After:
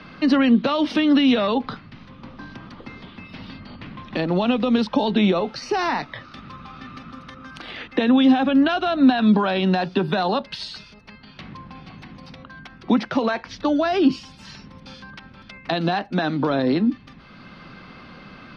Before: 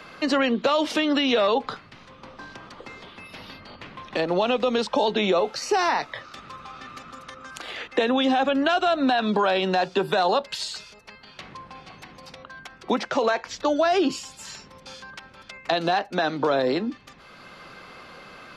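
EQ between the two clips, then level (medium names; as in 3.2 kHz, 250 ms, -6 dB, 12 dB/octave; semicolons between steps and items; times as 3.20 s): Savitzky-Golay filter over 15 samples; resonant low shelf 330 Hz +8 dB, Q 1.5; 0.0 dB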